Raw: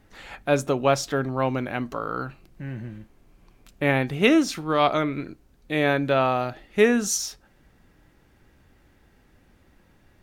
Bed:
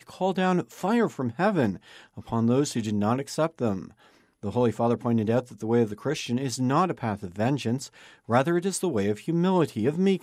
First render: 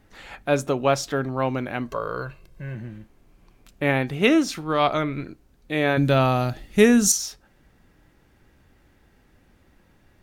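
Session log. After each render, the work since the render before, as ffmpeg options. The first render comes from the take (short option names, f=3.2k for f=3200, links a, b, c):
-filter_complex "[0:a]asettb=1/sr,asplit=3[a][b][c];[a]atrim=end=1.884[d];[b]atrim=start=1.88:end=2.75,asetpts=PTS-STARTPTS,afade=t=in:d=0.004:c=qsin,afade=t=out:st=0.866:d=0.004:c=qsin,aecho=1:1:1.9:0.65,atrim=end_sample=38367[e];[c]atrim=start=2.746[f];[d][e]acrossfade=d=0.004:c1=hsin:c2=qsin[g];[g][f]acrossfade=d=0.004:c1=qsin:c2=hsin,asettb=1/sr,asplit=3[h][i][j];[h]atrim=end=4.504[k];[i]atrim=start=4.5:end=5.26,asetpts=PTS-STARTPTS,afade=t=in:d=0.004:c=qsin,afade=t=out:st=0.756:d=0.004:c=qsin,asubboost=boost=7:cutoff=160[l];[j]atrim=start=5.256[m];[k][l]acrossfade=d=0.004:c1=hsin:c2=qsin[n];[n][m]acrossfade=d=0.004:c1=qsin:c2=hsin,asettb=1/sr,asplit=3[o][p][q];[o]atrim=end=5.974[r];[p]atrim=start=5.97:end=7.12,asetpts=PTS-STARTPTS,afade=t=in:d=0.004:c=qsin,afade=t=out:st=1.146:d=0.004:c=qsin,bass=f=250:g=11,treble=f=4k:g=11[s];[q]atrim=start=7.116[t];[r][s]acrossfade=d=0.004:c1=hsin:c2=qsin[u];[u][t]acrossfade=d=0.004:c1=qsin:c2=hsin"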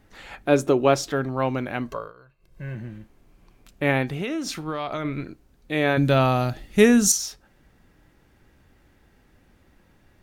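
-filter_complex "[0:a]asettb=1/sr,asplit=3[a][b][c];[a]atrim=end=0.434[d];[b]atrim=start=0.43:end=1.11,asetpts=PTS-STARTPTS,afade=t=in:d=0.004:c=qsin,afade=t=out:st=0.676:d=0.004:c=qsin,equalizer=f=350:w=2.4:g=9.5[e];[c]atrim=start=1.106[f];[d][e]acrossfade=d=0.004:c1=hsin:c2=qsin[g];[g][f]acrossfade=d=0.004:c1=qsin:c2=hsin,asettb=1/sr,asplit=3[h][i][j];[h]atrim=end=4.114[k];[i]atrim=start=4.11:end=5.05,asetpts=PTS-STARTPTS,afade=t=in:d=0.004:c=qsin,afade=t=out:st=0.936:d=0.004:c=qsin,acompressor=threshold=-24dB:ratio=16:attack=3.2:release=140:knee=1:detection=peak[l];[j]atrim=start=5.046[m];[k][l]acrossfade=d=0.004:c1=hsin:c2=qsin[n];[n][m]acrossfade=d=0.004:c1=qsin:c2=hsin,asplit=3[o][p][q];[o]atrim=end=2.13,asetpts=PTS-STARTPTS,afade=t=out:st=1.89:d=0.24:silence=0.0891251[r];[p]atrim=start=2.13:end=2.38,asetpts=PTS-STARTPTS,volume=-21dB[s];[q]atrim=start=2.38,asetpts=PTS-STARTPTS,afade=t=in:d=0.24:silence=0.0891251[t];[r][s][t]concat=n=3:v=0:a=1"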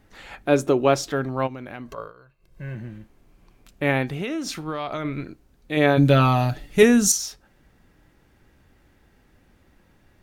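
-filter_complex "[0:a]asplit=3[a][b][c];[a]afade=t=out:st=1.46:d=0.02[d];[b]acompressor=threshold=-34dB:ratio=3:attack=3.2:release=140:knee=1:detection=peak,afade=t=in:st=1.46:d=0.02,afade=t=out:st=1.97:d=0.02[e];[c]afade=t=in:st=1.97:d=0.02[f];[d][e][f]amix=inputs=3:normalize=0,asettb=1/sr,asplit=3[g][h][i];[g]atrim=end=5.764[j];[h]atrim=start=5.76:end=6.83,asetpts=PTS-STARTPTS,afade=t=in:d=0.004:c=qsin,afade=t=out:st=1.066:d=0.004:c=qsin,aecho=1:1:6.9:0.65,atrim=end_sample=47187[k];[i]atrim=start=6.826[l];[j][k]acrossfade=d=0.004:c1=hsin:c2=qsin[m];[m][l]acrossfade=d=0.004:c1=qsin:c2=hsin"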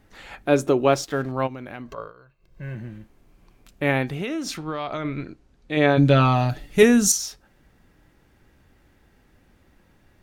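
-filter_complex "[0:a]asettb=1/sr,asplit=3[a][b][c];[a]atrim=end=0.924[d];[b]atrim=start=0.92:end=1.32,asetpts=PTS-STARTPTS,afade=t=in:d=0.004:c=qsin,afade=t=out:st=0.396:d=0.004:c=qsin,aeval=exprs='sgn(val(0))*max(abs(val(0))-0.00422,0)':c=same[e];[c]atrim=start=1.316[f];[d][e]acrossfade=d=0.004:c1=hsin:c2=qsin[g];[g][f]acrossfade=d=0.004:c1=qsin:c2=hsin,asettb=1/sr,asplit=3[h][i][j];[h]atrim=end=1.824[k];[i]atrim=start=1.82:end=2.63,asetpts=PTS-STARTPTS,afade=t=in:d=0.004:c=qsin,afade=t=out:st=0.806:d=0.004:c=qsin,equalizer=f=11k:t=o:w=0.8:g=-9.5[l];[j]atrim=start=2.626[m];[k][l]acrossfade=d=0.004:c1=hsin:c2=qsin[n];[n][m]acrossfade=d=0.004:c1=qsin:c2=hsin,asettb=1/sr,asplit=3[o][p][q];[o]atrim=end=4.574[r];[p]atrim=start=4.57:end=6.5,asetpts=PTS-STARTPTS,afade=t=in:d=0.004:c=qsin,afade=t=out:st=1.926:d=0.004:c=qsin,lowpass=7.2k[s];[q]atrim=start=6.496[t];[r][s]acrossfade=d=0.004:c1=hsin:c2=qsin[u];[u][t]acrossfade=d=0.004:c1=qsin:c2=hsin"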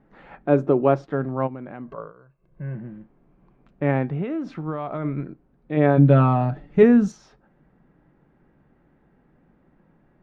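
-af "lowpass=1.3k,lowshelf=f=120:t=q:w=3:g=-6"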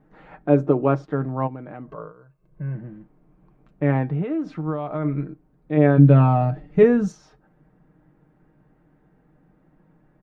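-af "equalizer=f=2.9k:w=0.63:g=-3,aecho=1:1:6.5:0.46"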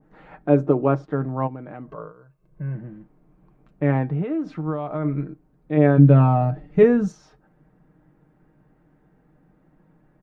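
-af "adynamicequalizer=threshold=0.0158:dfrequency=1700:dqfactor=0.7:tfrequency=1700:tqfactor=0.7:attack=5:release=100:ratio=0.375:range=2.5:mode=cutabove:tftype=highshelf"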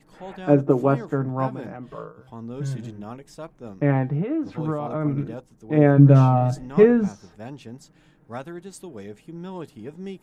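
-filter_complex "[1:a]volume=-12.5dB[a];[0:a][a]amix=inputs=2:normalize=0"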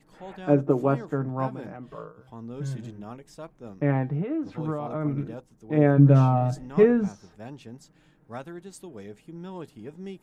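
-af "volume=-3.5dB"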